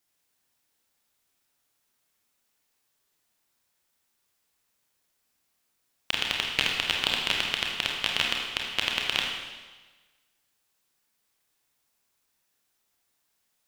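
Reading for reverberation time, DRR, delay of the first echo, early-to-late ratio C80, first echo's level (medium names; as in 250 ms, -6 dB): 1.3 s, -1.0 dB, no echo, 3.5 dB, no echo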